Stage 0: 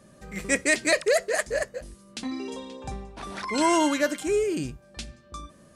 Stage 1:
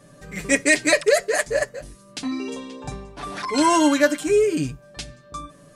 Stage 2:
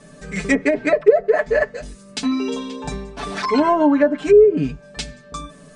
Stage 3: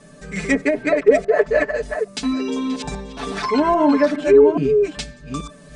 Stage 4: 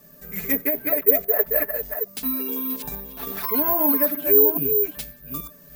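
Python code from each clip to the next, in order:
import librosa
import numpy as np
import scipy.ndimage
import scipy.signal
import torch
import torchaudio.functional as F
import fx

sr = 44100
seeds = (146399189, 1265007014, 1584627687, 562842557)

y1 = x + 0.77 * np.pad(x, (int(6.9 * sr / 1000.0), 0))[:len(x)]
y1 = F.gain(torch.from_numpy(y1), 2.5).numpy()
y2 = scipy.signal.sosfilt(scipy.signal.butter(16, 10000.0, 'lowpass', fs=sr, output='sos'), y1)
y2 = y2 + 0.6 * np.pad(y2, (int(4.6 * sr / 1000.0), 0))[:len(y2)]
y2 = fx.env_lowpass_down(y2, sr, base_hz=640.0, full_db=-13.0)
y2 = F.gain(torch.from_numpy(y2), 4.5).numpy()
y3 = fx.reverse_delay(y2, sr, ms=416, wet_db=-5.5)
y3 = F.gain(torch.from_numpy(y3), -1.0).numpy()
y4 = (np.kron(y3[::3], np.eye(3)[0]) * 3)[:len(y3)]
y4 = F.gain(torch.from_numpy(y4), -9.0).numpy()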